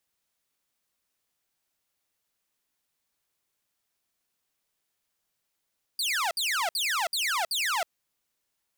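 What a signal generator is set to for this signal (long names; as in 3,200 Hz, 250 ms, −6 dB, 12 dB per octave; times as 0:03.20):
repeated falling chirps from 4,900 Hz, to 630 Hz, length 0.32 s saw, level −22.5 dB, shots 5, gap 0.06 s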